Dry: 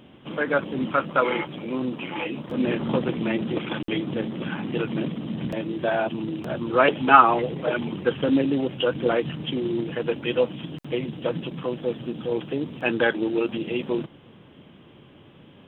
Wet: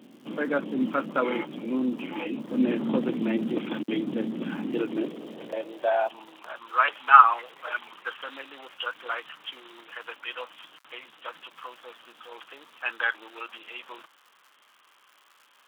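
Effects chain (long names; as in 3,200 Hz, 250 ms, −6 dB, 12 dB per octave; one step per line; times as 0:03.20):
surface crackle 210 per second −41 dBFS
high-pass filter sweep 240 Hz → 1,200 Hz, 0:04.57–0:06.65
level −6 dB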